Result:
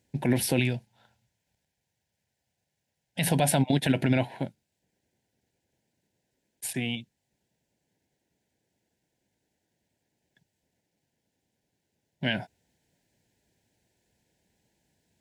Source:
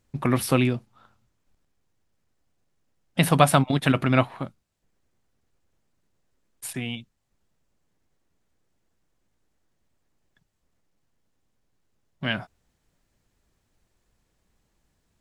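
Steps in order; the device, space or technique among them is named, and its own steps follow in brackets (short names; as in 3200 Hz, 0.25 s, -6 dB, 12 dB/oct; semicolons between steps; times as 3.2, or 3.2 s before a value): 0.59–3.27 bell 310 Hz -10 dB 1.2 oct; PA system with an anti-feedback notch (HPF 100 Hz 12 dB/oct; Butterworth band-stop 1200 Hz, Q 2; limiter -14 dBFS, peak gain reduction 9 dB); gain +1 dB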